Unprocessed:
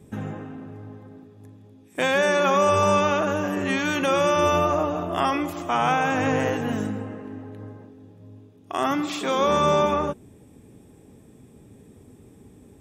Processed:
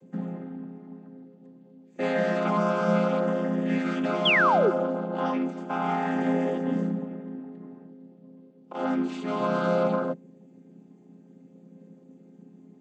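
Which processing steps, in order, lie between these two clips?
chord vocoder minor triad, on F3; painted sound fall, 4.25–4.71, 340–3500 Hz -18 dBFS; gain -3 dB

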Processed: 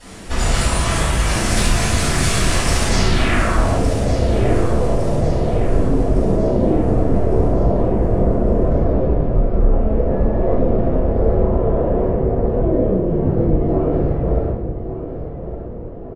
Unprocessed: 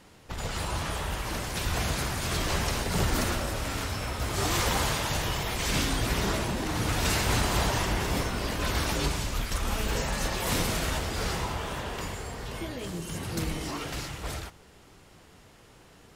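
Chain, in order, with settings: tracing distortion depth 0.069 ms; compressor, threshold -33 dBFS, peak gain reduction 11.5 dB; low-pass sweep 9100 Hz -> 530 Hz, 2.81–3.81; feedback echo 1.159 s, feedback 47%, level -12 dB; reverb RT60 0.70 s, pre-delay 3 ms, DRR -14.5 dB; gain -1 dB

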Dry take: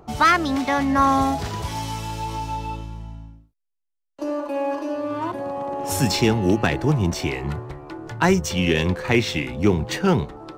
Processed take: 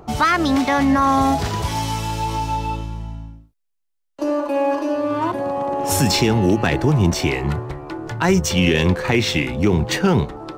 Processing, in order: limiter -12.5 dBFS, peak gain reduction 8 dB; gain +5.5 dB

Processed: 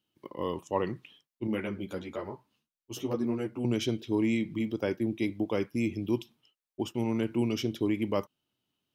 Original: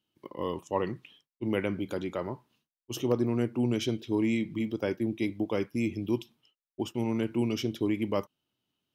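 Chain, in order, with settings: 1.47–3.65 ensemble effect

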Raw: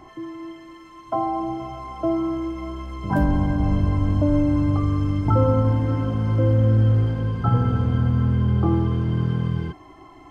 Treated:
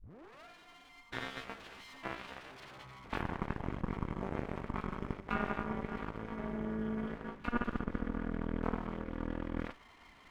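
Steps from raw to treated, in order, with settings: tape start at the beginning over 0.45 s; graphic EQ 125/250/500/1000/2000/4000 Hz +8/-6/-7/+6/+9/-11 dB; reverse; compressor 4:1, threshold -25 dBFS, peak gain reduction 14 dB; reverse; full-wave rectifier; added harmonics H 3 -7 dB, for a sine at -16 dBFS; gain -1.5 dB

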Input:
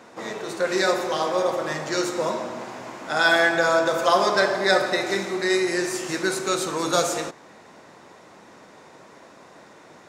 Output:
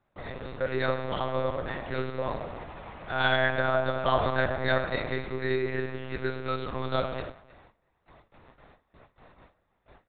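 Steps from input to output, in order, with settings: gate with hold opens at -37 dBFS; speakerphone echo 0.31 s, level -22 dB; monotone LPC vocoder at 8 kHz 130 Hz; gain -6 dB

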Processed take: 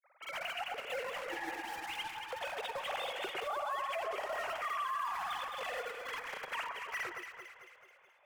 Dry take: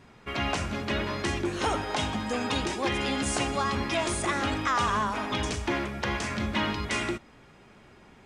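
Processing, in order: sine-wave speech; in parallel at -8 dB: bit-crush 5-bit; on the sum: spectral repair 1.37–2.04, 360–2000 Hz both; grains, pitch spread up and down by 0 st; echo with dull and thin repeats by turns 0.11 s, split 1700 Hz, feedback 73%, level -5 dB; limiter -20.5 dBFS, peak gain reduction 11 dB; on a send at -20.5 dB: reverb RT60 1.1 s, pre-delay 3 ms; on the sum: vibrato 0.4 Hz 67 cents; gain -9 dB

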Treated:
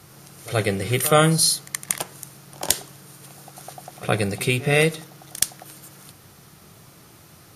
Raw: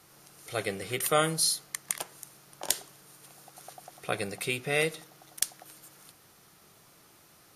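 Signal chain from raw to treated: bell 100 Hz +10 dB 2.4 oct; reverse echo 74 ms -17 dB; gain +7.5 dB

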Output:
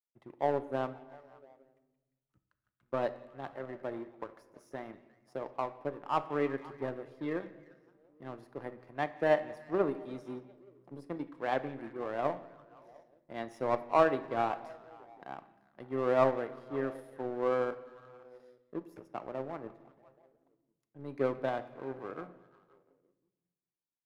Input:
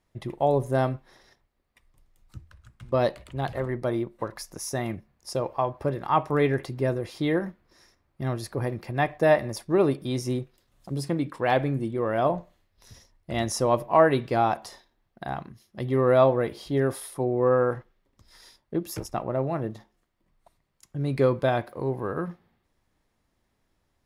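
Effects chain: three-band isolator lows -18 dB, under 190 Hz, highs -14 dB, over 2200 Hz; delay with a stepping band-pass 0.174 s, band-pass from 2900 Hz, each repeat -0.7 oct, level -7.5 dB; power-law curve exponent 1.4; shoebox room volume 590 m³, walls mixed, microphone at 0.33 m; gain -4 dB

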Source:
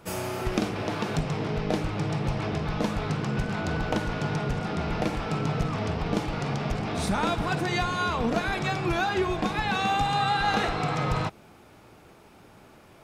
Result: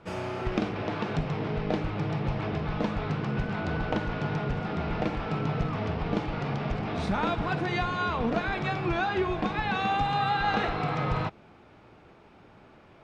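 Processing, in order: LPF 3500 Hz 12 dB/oct; gain -1.5 dB

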